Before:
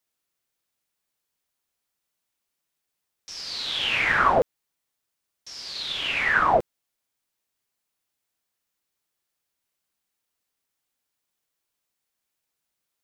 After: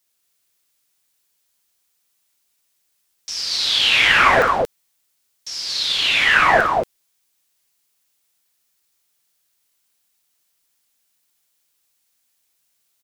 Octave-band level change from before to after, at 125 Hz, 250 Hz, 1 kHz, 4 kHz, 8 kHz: +4.5, +5.0, +6.0, +11.0, +13.0 dB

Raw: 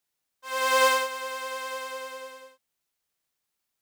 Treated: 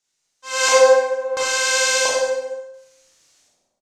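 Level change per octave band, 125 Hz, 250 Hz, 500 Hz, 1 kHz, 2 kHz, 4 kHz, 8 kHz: n/a, +4.0 dB, +14.0 dB, +4.0 dB, +8.5 dB, +10.5 dB, +16.0 dB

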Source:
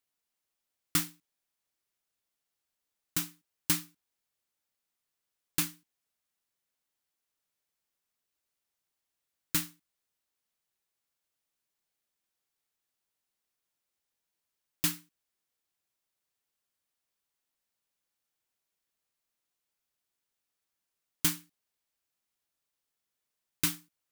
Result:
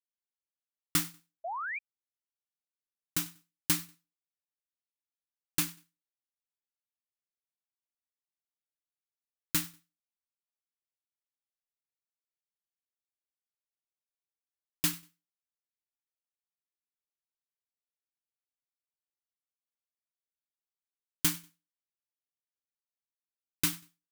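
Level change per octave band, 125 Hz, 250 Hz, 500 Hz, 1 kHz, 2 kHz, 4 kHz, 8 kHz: 0.0, 0.0, +3.5, +5.5, +2.0, 0.0, 0.0 dB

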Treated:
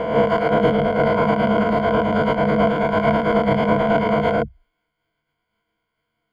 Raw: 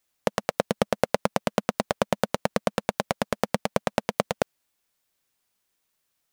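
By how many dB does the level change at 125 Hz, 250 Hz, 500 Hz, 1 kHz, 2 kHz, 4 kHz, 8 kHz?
+11.0 dB, +12.0 dB, +10.0 dB, +10.0 dB, +8.5 dB, +1.5 dB, under -15 dB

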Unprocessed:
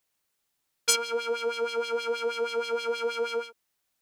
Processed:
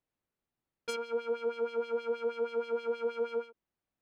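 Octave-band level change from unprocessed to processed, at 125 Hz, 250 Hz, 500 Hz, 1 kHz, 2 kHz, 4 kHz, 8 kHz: n/a, +1.0 dB, -3.0 dB, -8.5 dB, -11.5 dB, -17.0 dB, under -20 dB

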